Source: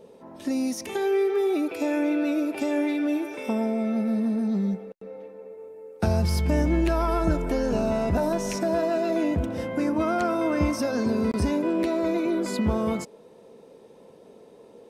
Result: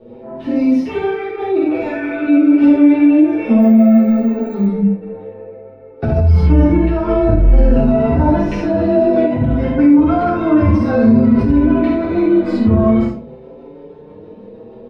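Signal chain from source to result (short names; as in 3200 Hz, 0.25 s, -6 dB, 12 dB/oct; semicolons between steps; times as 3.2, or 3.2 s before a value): bell 110 Hz +6 dB 0.27 oct; rotary speaker horn 6.3 Hz; air absorption 370 m; early reflections 49 ms -5.5 dB, 70 ms -6 dB; shoebox room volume 250 m³, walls furnished, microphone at 3.5 m; 3.6–4.66 careless resampling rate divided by 2×, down filtered, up hold; maximiser +10.5 dB; endless flanger 5.8 ms +0.54 Hz; gain -1 dB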